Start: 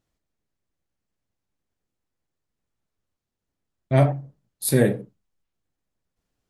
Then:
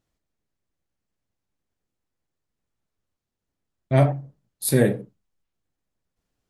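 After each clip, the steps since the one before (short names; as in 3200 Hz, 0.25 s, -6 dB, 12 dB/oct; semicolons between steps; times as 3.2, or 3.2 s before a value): nothing audible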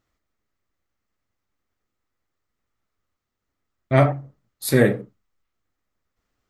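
thirty-one-band EQ 160 Hz -8 dB, 1250 Hz +9 dB, 2000 Hz +6 dB, 10000 Hz -10 dB; gain +2.5 dB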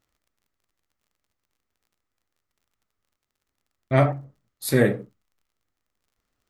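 crackle 39/s -52 dBFS; gain -2.5 dB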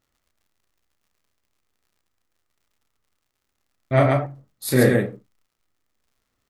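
loudspeakers at several distances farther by 11 m -4 dB, 47 m -2 dB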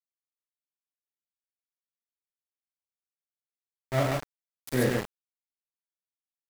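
sample gate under -19.5 dBFS; gain -9 dB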